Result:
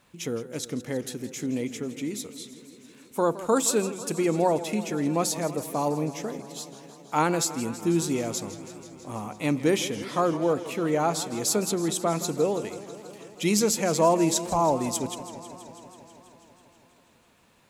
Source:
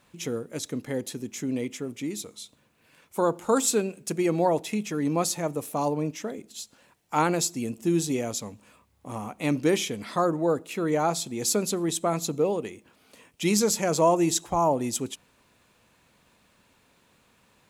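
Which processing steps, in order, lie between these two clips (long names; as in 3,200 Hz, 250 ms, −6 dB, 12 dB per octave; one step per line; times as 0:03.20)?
feedback echo with a swinging delay time 163 ms, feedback 77%, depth 138 cents, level −15 dB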